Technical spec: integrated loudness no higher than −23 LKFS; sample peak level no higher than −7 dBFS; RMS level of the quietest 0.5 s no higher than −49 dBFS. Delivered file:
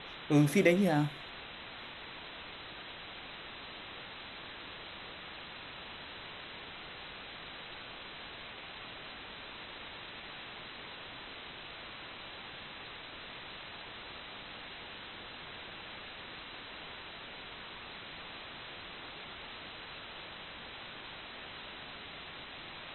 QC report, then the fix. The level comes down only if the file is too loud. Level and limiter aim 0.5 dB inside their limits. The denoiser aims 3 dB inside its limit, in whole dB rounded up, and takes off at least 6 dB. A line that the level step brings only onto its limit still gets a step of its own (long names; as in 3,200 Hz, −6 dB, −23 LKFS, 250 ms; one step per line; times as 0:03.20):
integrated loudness −40.0 LKFS: in spec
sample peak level −12.5 dBFS: in spec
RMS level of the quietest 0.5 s −47 dBFS: out of spec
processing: broadband denoise 6 dB, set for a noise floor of −47 dBFS